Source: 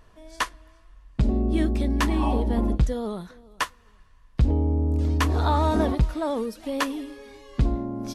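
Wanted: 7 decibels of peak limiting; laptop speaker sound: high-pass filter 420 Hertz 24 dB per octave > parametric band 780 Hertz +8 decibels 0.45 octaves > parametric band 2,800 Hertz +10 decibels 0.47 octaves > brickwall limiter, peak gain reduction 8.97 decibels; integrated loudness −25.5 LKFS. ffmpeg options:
ffmpeg -i in.wav -af "alimiter=limit=-17.5dB:level=0:latency=1,highpass=frequency=420:width=0.5412,highpass=frequency=420:width=1.3066,equalizer=frequency=780:width_type=o:width=0.45:gain=8,equalizer=frequency=2800:width_type=o:width=0.47:gain=10,volume=9dB,alimiter=limit=-13dB:level=0:latency=1" out.wav

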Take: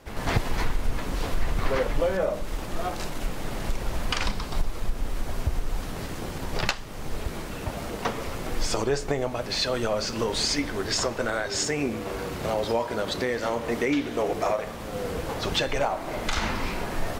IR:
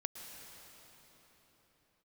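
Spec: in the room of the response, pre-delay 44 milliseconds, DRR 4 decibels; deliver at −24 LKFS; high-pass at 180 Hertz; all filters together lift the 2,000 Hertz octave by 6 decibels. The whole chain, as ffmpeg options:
-filter_complex "[0:a]highpass=180,equalizer=frequency=2000:width_type=o:gain=7.5,asplit=2[link_01][link_02];[1:a]atrim=start_sample=2205,adelay=44[link_03];[link_02][link_03]afir=irnorm=-1:irlink=0,volume=-3dB[link_04];[link_01][link_04]amix=inputs=2:normalize=0,volume=2dB"

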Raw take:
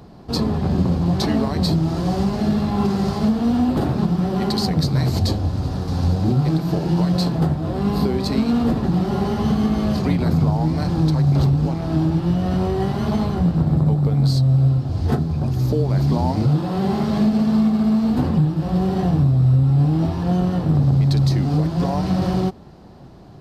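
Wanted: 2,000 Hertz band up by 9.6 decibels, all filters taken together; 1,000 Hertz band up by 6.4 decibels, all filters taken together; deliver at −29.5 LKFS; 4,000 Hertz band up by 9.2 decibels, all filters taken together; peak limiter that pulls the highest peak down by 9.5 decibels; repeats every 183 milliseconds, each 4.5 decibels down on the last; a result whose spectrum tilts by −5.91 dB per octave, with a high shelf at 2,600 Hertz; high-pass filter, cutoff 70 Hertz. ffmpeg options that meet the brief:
ffmpeg -i in.wav -af "highpass=70,equalizer=frequency=1000:width_type=o:gain=6.5,equalizer=frequency=2000:width_type=o:gain=7,highshelf=frequency=2600:gain=4,equalizer=frequency=4000:width_type=o:gain=5.5,alimiter=limit=-11.5dB:level=0:latency=1,aecho=1:1:183|366|549|732|915|1098|1281|1464|1647:0.596|0.357|0.214|0.129|0.0772|0.0463|0.0278|0.0167|0.01,volume=-11dB" out.wav

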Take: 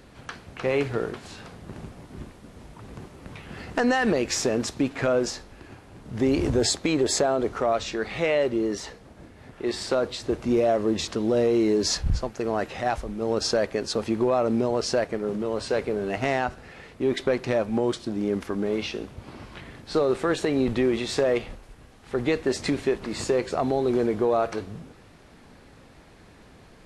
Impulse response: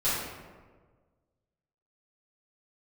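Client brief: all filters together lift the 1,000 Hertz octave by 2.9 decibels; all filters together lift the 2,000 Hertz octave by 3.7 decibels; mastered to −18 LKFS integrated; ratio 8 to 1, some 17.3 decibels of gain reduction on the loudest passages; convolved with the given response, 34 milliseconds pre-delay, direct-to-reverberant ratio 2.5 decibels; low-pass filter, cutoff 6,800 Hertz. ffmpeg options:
-filter_complex "[0:a]lowpass=6800,equalizer=frequency=1000:width_type=o:gain=3.5,equalizer=frequency=2000:width_type=o:gain=3.5,acompressor=threshold=-36dB:ratio=8,asplit=2[link_01][link_02];[1:a]atrim=start_sample=2205,adelay=34[link_03];[link_02][link_03]afir=irnorm=-1:irlink=0,volume=-13.5dB[link_04];[link_01][link_04]amix=inputs=2:normalize=0,volume=20dB"

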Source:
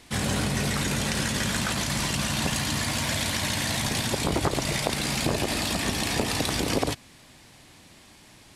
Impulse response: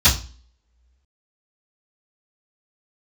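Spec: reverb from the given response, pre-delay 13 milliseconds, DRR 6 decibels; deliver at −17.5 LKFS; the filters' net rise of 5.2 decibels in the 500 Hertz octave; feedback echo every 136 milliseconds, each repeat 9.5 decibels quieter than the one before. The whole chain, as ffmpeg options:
-filter_complex "[0:a]equalizer=frequency=500:width_type=o:gain=6.5,aecho=1:1:136|272|408|544:0.335|0.111|0.0365|0.012,asplit=2[link_01][link_02];[1:a]atrim=start_sample=2205,adelay=13[link_03];[link_02][link_03]afir=irnorm=-1:irlink=0,volume=-26dB[link_04];[link_01][link_04]amix=inputs=2:normalize=0,volume=4.5dB"

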